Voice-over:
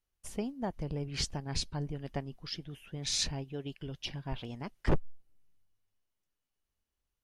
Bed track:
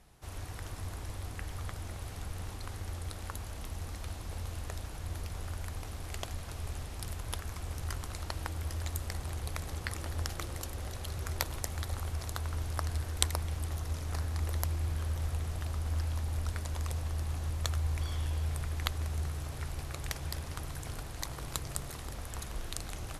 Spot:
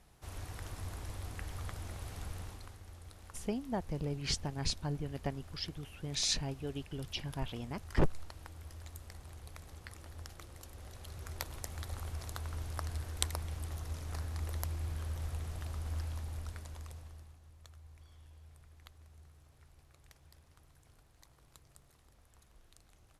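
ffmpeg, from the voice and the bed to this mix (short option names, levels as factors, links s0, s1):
-filter_complex "[0:a]adelay=3100,volume=0.944[s0];[1:a]volume=1.78,afade=t=out:st=2.3:d=0.48:silence=0.316228,afade=t=in:st=10.54:d=1.5:silence=0.421697,afade=t=out:st=15.96:d=1.41:silence=0.11885[s1];[s0][s1]amix=inputs=2:normalize=0"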